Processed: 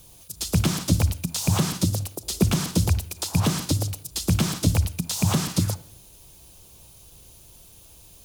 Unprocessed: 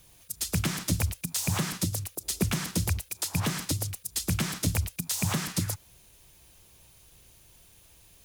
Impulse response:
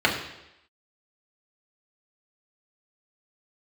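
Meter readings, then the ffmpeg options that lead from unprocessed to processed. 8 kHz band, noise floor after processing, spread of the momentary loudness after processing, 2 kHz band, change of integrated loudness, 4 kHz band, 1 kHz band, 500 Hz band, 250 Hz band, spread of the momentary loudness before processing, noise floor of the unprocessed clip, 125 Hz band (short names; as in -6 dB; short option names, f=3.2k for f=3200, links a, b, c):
+2.5 dB, -50 dBFS, 6 LU, +0.5 dB, +5.5 dB, +4.5 dB, +5.0 dB, +7.0 dB, +7.5 dB, 4 LU, -58 dBFS, +7.5 dB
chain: -filter_complex "[0:a]acrossover=split=5300[a][b];[b]acompressor=threshold=-36dB:ratio=4:attack=1:release=60[c];[a][c]amix=inputs=2:normalize=0,equalizer=f=1.9k:t=o:w=0.98:g=-9.5,asplit=2[d][e];[1:a]atrim=start_sample=2205,adelay=56[f];[e][f]afir=irnorm=-1:irlink=0,volume=-34dB[g];[d][g]amix=inputs=2:normalize=0,volume=7.5dB"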